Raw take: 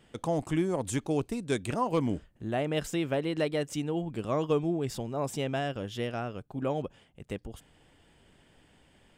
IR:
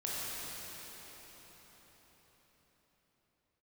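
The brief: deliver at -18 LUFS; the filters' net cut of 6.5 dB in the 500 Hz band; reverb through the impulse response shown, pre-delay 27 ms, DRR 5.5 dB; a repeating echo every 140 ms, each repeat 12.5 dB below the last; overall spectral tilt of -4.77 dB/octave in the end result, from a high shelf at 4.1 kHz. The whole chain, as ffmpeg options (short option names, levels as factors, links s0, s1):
-filter_complex "[0:a]equalizer=f=500:t=o:g=-8.5,highshelf=f=4100:g=7,aecho=1:1:140|280|420:0.237|0.0569|0.0137,asplit=2[s0][s1];[1:a]atrim=start_sample=2205,adelay=27[s2];[s1][s2]afir=irnorm=-1:irlink=0,volume=0.299[s3];[s0][s3]amix=inputs=2:normalize=0,volume=5.62"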